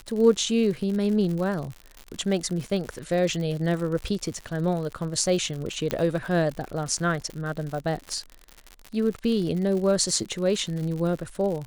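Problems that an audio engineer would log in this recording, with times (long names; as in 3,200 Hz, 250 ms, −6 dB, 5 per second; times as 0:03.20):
surface crackle 99 per second −31 dBFS
0:05.91: click −9 dBFS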